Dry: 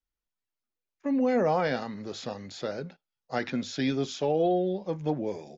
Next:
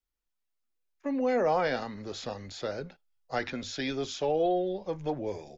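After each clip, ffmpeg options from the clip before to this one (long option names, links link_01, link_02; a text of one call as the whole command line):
ffmpeg -i in.wav -filter_complex "[0:a]asubboost=boost=11:cutoff=57,acrossover=split=280[link_01][link_02];[link_01]alimiter=level_in=12.5dB:limit=-24dB:level=0:latency=1,volume=-12.5dB[link_03];[link_03][link_02]amix=inputs=2:normalize=0" out.wav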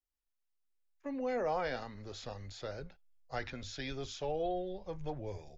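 ffmpeg -i in.wav -af "asubboost=boost=7.5:cutoff=90,volume=-7dB" out.wav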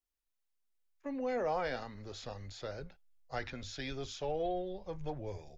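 ffmpeg -i in.wav -af "aeval=exprs='0.0668*(cos(1*acos(clip(val(0)/0.0668,-1,1)))-cos(1*PI/2))+0.000531*(cos(8*acos(clip(val(0)/0.0668,-1,1)))-cos(8*PI/2))':channel_layout=same" out.wav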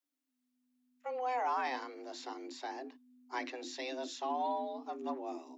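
ffmpeg -i in.wav -af "afreqshift=250" out.wav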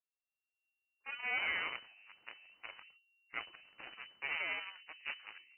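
ffmpeg -i in.wav -af "flanger=delay=2.3:depth=3.2:regen=74:speed=1.1:shape=triangular,aeval=exprs='0.0398*(cos(1*acos(clip(val(0)/0.0398,-1,1)))-cos(1*PI/2))+0.0178*(cos(2*acos(clip(val(0)/0.0398,-1,1)))-cos(2*PI/2))+0.002*(cos(4*acos(clip(val(0)/0.0398,-1,1)))-cos(4*PI/2))+0.000794*(cos(6*acos(clip(val(0)/0.0398,-1,1)))-cos(6*PI/2))+0.00794*(cos(7*acos(clip(val(0)/0.0398,-1,1)))-cos(7*PI/2))':channel_layout=same,lowpass=frequency=2600:width_type=q:width=0.5098,lowpass=frequency=2600:width_type=q:width=0.6013,lowpass=frequency=2600:width_type=q:width=0.9,lowpass=frequency=2600:width_type=q:width=2.563,afreqshift=-3000,volume=1dB" out.wav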